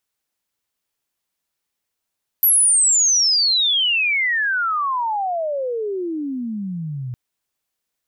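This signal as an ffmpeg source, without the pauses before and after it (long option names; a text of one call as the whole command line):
ffmpeg -f lavfi -i "aevalsrc='pow(10,(-11-14*t/4.71)/20)*sin(2*PI*12000*4.71/log(120/12000)*(exp(log(120/12000)*t/4.71)-1))':duration=4.71:sample_rate=44100" out.wav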